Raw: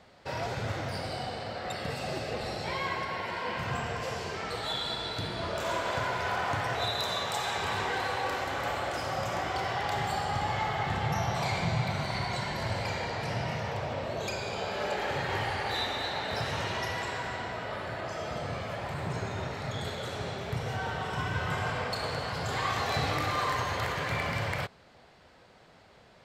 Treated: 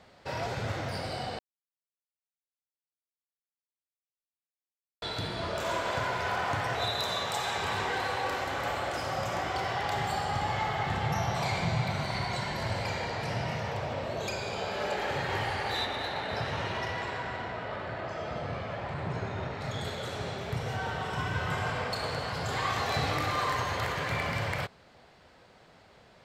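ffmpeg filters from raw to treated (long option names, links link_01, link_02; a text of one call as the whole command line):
ffmpeg -i in.wav -filter_complex "[0:a]asettb=1/sr,asplit=3[link_01][link_02][link_03];[link_01]atrim=end=15.854[link_04];[link_02]atrim=start=15.85:end=19.61,asetpts=PTS-STARTPTS,afade=type=in:duration=0.004:curve=qsin,afade=type=out:start_time=3.756:duration=0.004:curve=qsin,adynamicsmooth=sensitivity=3.5:basefreq=4100[link_05];[link_03]atrim=start=19.606[link_06];[link_04][link_05]acrossfade=duration=0.004:curve1=hsin:curve2=qsin[link_07];[link_07][link_06]acrossfade=duration=0.004:curve1=qsin:curve2=hsin,asplit=3[link_08][link_09][link_10];[link_08]atrim=end=1.39,asetpts=PTS-STARTPTS,afade=type=out:start_time=1.386:duration=0.004:curve=hsin[link_11];[link_09]atrim=start=1.39:end=5.02,asetpts=PTS-STARTPTS,volume=0[link_12];[link_10]atrim=start=5.02,asetpts=PTS-STARTPTS,afade=type=in:duration=0.004:curve=hsin[link_13];[link_11][link_12][link_13]concat=n=3:v=0:a=1" out.wav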